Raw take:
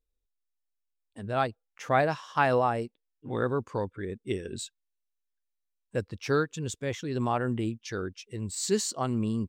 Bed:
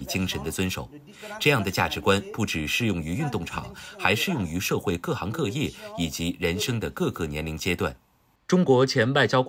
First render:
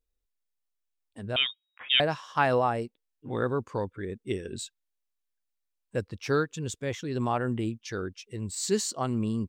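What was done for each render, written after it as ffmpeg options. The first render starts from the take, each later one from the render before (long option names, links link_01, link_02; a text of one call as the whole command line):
ffmpeg -i in.wav -filter_complex "[0:a]asettb=1/sr,asplit=3[link_01][link_02][link_03];[link_01]atrim=end=1.364[link_04];[link_02]atrim=start=1.36:end=2,asetpts=PTS-STARTPTS,afade=type=in:duration=0.004:curve=qsin,afade=type=out:start_time=0.636:duration=0.004:curve=qsin,lowpass=frequency=3200:width_type=q:width=0.5098,lowpass=frequency=3200:width_type=q:width=0.6013,lowpass=frequency=3200:width_type=q:width=0.9,lowpass=frequency=3200:width_type=q:width=2.563,afreqshift=-3800[link_05];[link_03]atrim=start=1.996[link_06];[link_04][link_05]acrossfade=duration=0.004:curve1=hsin:curve2=qsin[link_07];[link_07][link_06]acrossfade=duration=0.004:curve1=qsin:curve2=hsin" out.wav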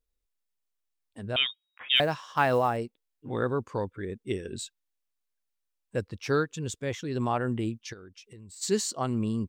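ffmpeg -i in.wav -filter_complex "[0:a]asplit=3[link_01][link_02][link_03];[link_01]afade=type=out:start_time=1.95:duration=0.02[link_04];[link_02]acrusher=bits=8:mode=log:mix=0:aa=0.000001,afade=type=in:start_time=1.95:duration=0.02,afade=type=out:start_time=2.76:duration=0.02[link_05];[link_03]afade=type=in:start_time=2.76:duration=0.02[link_06];[link_04][link_05][link_06]amix=inputs=3:normalize=0,asplit=3[link_07][link_08][link_09];[link_07]afade=type=out:start_time=7.92:duration=0.02[link_10];[link_08]acompressor=threshold=-45dB:ratio=6:attack=3.2:release=140:knee=1:detection=peak,afade=type=in:start_time=7.92:duration=0.02,afade=type=out:start_time=8.61:duration=0.02[link_11];[link_09]afade=type=in:start_time=8.61:duration=0.02[link_12];[link_10][link_11][link_12]amix=inputs=3:normalize=0" out.wav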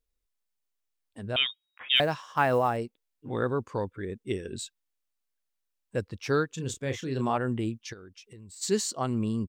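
ffmpeg -i in.wav -filter_complex "[0:a]asettb=1/sr,asplit=3[link_01][link_02][link_03];[link_01]atrim=end=2.224[link_04];[link_02]atrim=start=2.22:end=2.66,asetpts=PTS-STARTPTS,afade=type=in:duration=0.004:curve=qsin,afade=type=out:start_time=0.436:duration=0.004:curve=qsin,equalizer=frequency=4000:width=1.5:gain=-5.5[link_05];[link_03]atrim=start=2.656[link_06];[link_04][link_05]acrossfade=duration=0.004:curve1=hsin:curve2=qsin[link_07];[link_07][link_06]acrossfade=duration=0.004:curve1=qsin:curve2=hsin,asplit=3[link_08][link_09][link_10];[link_08]afade=type=out:start_time=6.57:duration=0.02[link_11];[link_09]asplit=2[link_12][link_13];[link_13]adelay=30,volume=-7.5dB[link_14];[link_12][link_14]amix=inputs=2:normalize=0,afade=type=in:start_time=6.57:duration=0.02,afade=type=out:start_time=7.36:duration=0.02[link_15];[link_10]afade=type=in:start_time=7.36:duration=0.02[link_16];[link_11][link_15][link_16]amix=inputs=3:normalize=0" out.wav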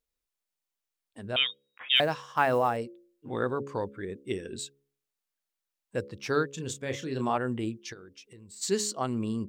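ffmpeg -i in.wav -af "lowshelf=frequency=91:gain=-11,bandreject=frequency=69.74:width_type=h:width=4,bandreject=frequency=139.48:width_type=h:width=4,bandreject=frequency=209.22:width_type=h:width=4,bandreject=frequency=278.96:width_type=h:width=4,bandreject=frequency=348.7:width_type=h:width=4,bandreject=frequency=418.44:width_type=h:width=4,bandreject=frequency=488.18:width_type=h:width=4,bandreject=frequency=557.92:width_type=h:width=4" out.wav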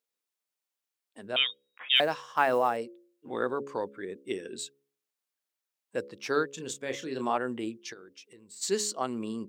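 ffmpeg -i in.wav -af "highpass=250" out.wav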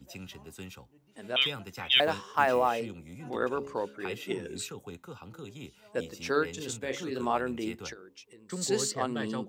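ffmpeg -i in.wav -i bed.wav -filter_complex "[1:a]volume=-17.5dB[link_01];[0:a][link_01]amix=inputs=2:normalize=0" out.wav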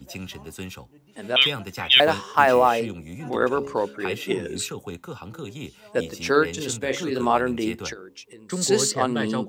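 ffmpeg -i in.wav -af "volume=8.5dB,alimiter=limit=-3dB:level=0:latency=1" out.wav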